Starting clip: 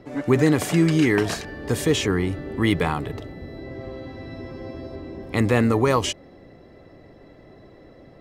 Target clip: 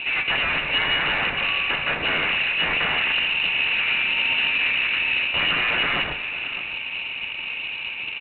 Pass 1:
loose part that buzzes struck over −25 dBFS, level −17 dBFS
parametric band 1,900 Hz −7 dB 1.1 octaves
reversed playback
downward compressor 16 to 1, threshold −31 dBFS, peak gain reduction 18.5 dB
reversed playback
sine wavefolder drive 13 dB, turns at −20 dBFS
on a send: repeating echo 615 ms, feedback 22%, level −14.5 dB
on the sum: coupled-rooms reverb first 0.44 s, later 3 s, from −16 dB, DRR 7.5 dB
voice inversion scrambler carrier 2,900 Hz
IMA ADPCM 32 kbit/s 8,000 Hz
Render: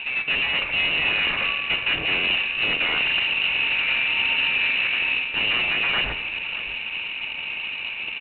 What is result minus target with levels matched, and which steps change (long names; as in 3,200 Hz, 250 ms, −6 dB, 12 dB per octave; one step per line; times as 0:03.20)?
downward compressor: peak gain reduction +7 dB
change: downward compressor 16 to 1, threshold −23.5 dBFS, peak gain reduction 11.5 dB